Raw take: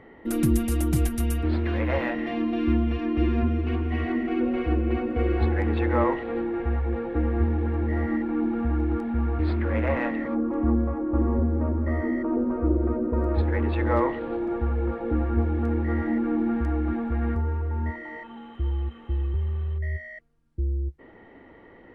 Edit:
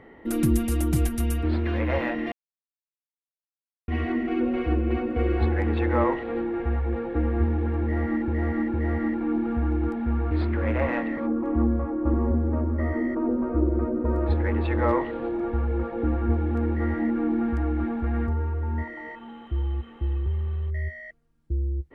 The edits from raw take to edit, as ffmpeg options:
-filter_complex "[0:a]asplit=5[a][b][c][d][e];[a]atrim=end=2.32,asetpts=PTS-STARTPTS,afade=t=out:st=2.316:d=0.004:c=hsin[f];[b]atrim=start=2.32:end=3.88,asetpts=PTS-STARTPTS,volume=0[g];[c]atrim=start=3.88:end=8.282,asetpts=PTS-STARTPTS,afade=t=in:d=0.004:c=hsin[h];[d]atrim=start=7.818:end=8.282[i];[e]atrim=start=7.818[j];[f][g][h]concat=n=3:v=0:a=1[k];[k][i]acrossfade=d=0.004:c1=hsin:c2=hsin[l];[l][j]acrossfade=d=0.004:c1=hsin:c2=hsin"

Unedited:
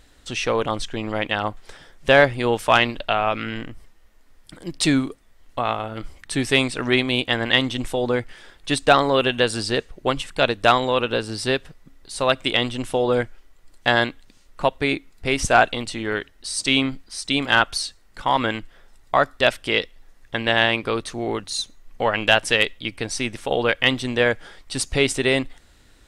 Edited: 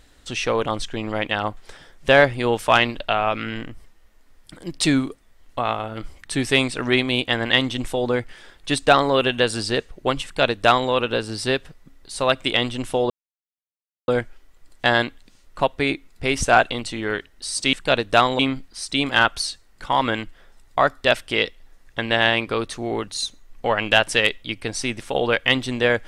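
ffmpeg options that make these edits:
-filter_complex "[0:a]asplit=4[a][b][c][d];[a]atrim=end=13.1,asetpts=PTS-STARTPTS,afade=t=out:st=13.096:d=0.004:c=hsin,apad=pad_dur=0.98[e];[b]atrim=start=13.1:end=16.752,asetpts=PTS-STARTPTS,afade=t=in:d=0.004:c=hsin[f];[c]atrim=start=10.238:end=10.902[g];[d]atrim=start=16.748[h];[e][f]concat=n=2:v=0:a=1[i];[i][g]acrossfade=d=0.004:c1=hsin:c2=hsin[j];[j][h]acrossfade=d=0.004:c1=hsin:c2=hsin"

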